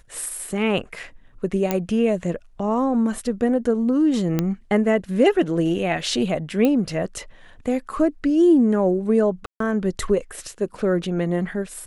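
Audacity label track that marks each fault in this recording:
1.710000	1.710000	click −7 dBFS
4.390000	4.390000	click −8 dBFS
6.650000	6.650000	click −9 dBFS
9.460000	9.600000	drop-out 143 ms

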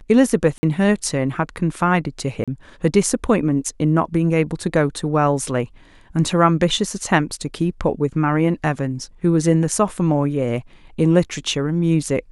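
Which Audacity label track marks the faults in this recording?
0.580000	0.630000	drop-out 50 ms
2.440000	2.480000	drop-out 36 ms

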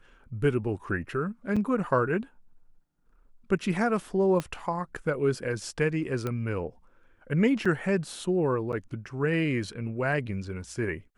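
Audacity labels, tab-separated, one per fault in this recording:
1.560000	1.570000	drop-out 5.5 ms
4.400000	4.400000	click −16 dBFS
6.270000	6.270000	click −18 dBFS
7.650000	7.660000	drop-out 5.3 ms
8.720000	8.730000	drop-out 8.3 ms

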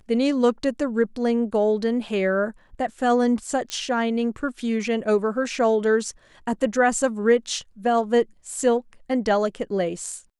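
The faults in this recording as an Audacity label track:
3.700000	3.700000	click −14 dBFS

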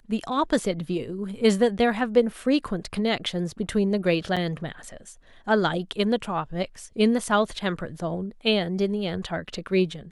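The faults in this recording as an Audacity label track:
4.360000	4.370000	drop-out 6.3 ms

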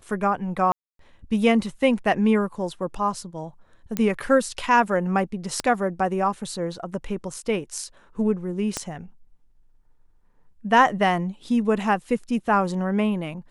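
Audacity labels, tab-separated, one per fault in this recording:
0.720000	0.990000	drop-out 273 ms
3.970000	3.970000	click −10 dBFS
5.600000	5.600000	click −12 dBFS
8.770000	8.770000	click −11 dBFS

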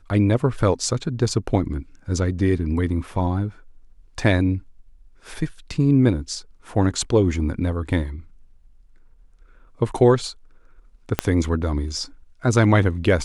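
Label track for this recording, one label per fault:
11.190000	11.190000	click −3 dBFS

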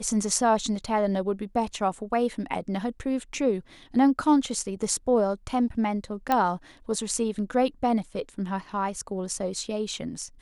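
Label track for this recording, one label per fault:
6.320000	6.320000	click −11 dBFS

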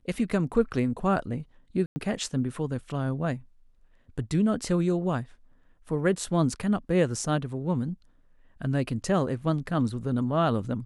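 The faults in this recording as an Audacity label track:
1.860000	1.960000	drop-out 100 ms

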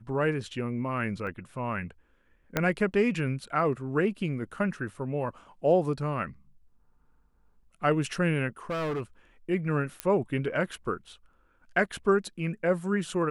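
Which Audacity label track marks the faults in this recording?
1.270000	1.270000	drop-out 2.1 ms
2.570000	2.570000	click −10 dBFS
8.700000	9.010000	clipping −27.5 dBFS
10.000000	10.000000	click −14 dBFS

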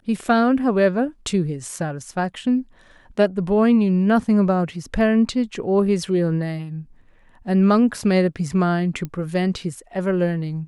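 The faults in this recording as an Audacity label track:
9.050000	9.050000	click −17 dBFS

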